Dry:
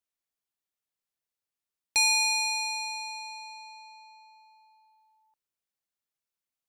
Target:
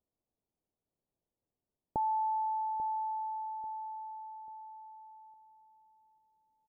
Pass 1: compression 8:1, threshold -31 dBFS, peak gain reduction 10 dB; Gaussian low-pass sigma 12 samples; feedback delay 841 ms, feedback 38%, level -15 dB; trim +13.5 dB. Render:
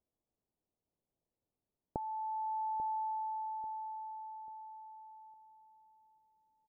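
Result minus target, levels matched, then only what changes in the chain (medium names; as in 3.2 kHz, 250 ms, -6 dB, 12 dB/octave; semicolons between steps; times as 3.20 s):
compression: peak gain reduction +10 dB
remove: compression 8:1, threshold -31 dBFS, peak gain reduction 10 dB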